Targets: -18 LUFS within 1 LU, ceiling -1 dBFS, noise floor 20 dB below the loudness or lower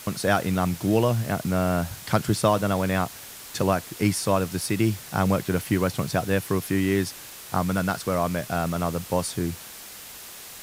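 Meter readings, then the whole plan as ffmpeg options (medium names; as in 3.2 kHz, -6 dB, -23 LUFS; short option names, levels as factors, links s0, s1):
noise floor -42 dBFS; noise floor target -45 dBFS; loudness -25.0 LUFS; peak level -4.0 dBFS; loudness target -18.0 LUFS
-> -af "afftdn=nr=6:nf=-42"
-af "volume=2.24,alimiter=limit=0.891:level=0:latency=1"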